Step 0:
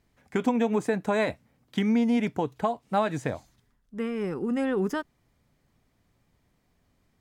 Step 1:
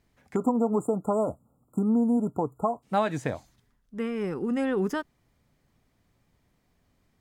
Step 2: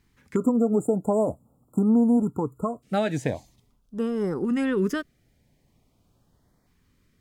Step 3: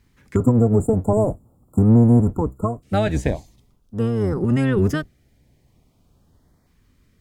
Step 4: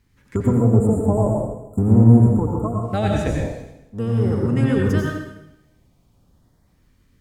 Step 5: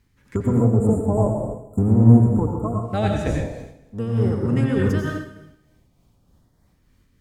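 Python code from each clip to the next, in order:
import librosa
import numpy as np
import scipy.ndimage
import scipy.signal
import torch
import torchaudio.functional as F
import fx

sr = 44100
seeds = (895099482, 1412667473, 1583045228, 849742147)

y1 = fx.spec_erase(x, sr, start_s=0.35, length_s=2.48, low_hz=1400.0, high_hz=6900.0)
y2 = fx.filter_lfo_notch(y1, sr, shape='saw_up', hz=0.45, low_hz=580.0, high_hz=2900.0, q=1.1)
y2 = y2 * librosa.db_to_amplitude(4.0)
y3 = fx.octave_divider(y2, sr, octaves=1, level_db=1.0)
y3 = y3 * librosa.db_to_amplitude(3.5)
y4 = fx.rev_plate(y3, sr, seeds[0], rt60_s=0.92, hf_ratio=0.95, predelay_ms=75, drr_db=-1.0)
y4 = y4 * librosa.db_to_amplitude(-3.5)
y5 = y4 * (1.0 - 0.33 / 2.0 + 0.33 / 2.0 * np.cos(2.0 * np.pi * 3.3 * (np.arange(len(y4)) / sr)))
y5 = fx.doppler_dist(y5, sr, depth_ms=0.12)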